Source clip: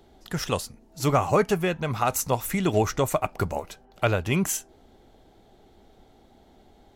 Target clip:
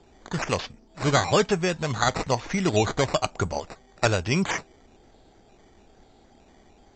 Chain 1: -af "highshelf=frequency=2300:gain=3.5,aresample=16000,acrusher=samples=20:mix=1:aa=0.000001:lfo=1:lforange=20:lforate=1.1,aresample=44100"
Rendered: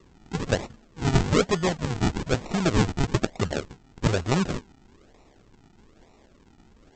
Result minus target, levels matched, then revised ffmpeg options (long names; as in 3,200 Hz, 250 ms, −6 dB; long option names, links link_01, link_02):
sample-and-hold swept by an LFO: distortion +13 dB
-af "highshelf=frequency=2300:gain=3.5,aresample=16000,acrusher=samples=4:mix=1:aa=0.000001:lfo=1:lforange=4:lforate=1.1,aresample=44100"